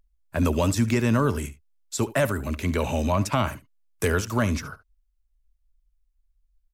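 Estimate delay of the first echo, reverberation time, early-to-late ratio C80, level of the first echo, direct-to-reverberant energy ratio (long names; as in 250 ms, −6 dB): 71 ms, no reverb audible, no reverb audible, −17.5 dB, no reverb audible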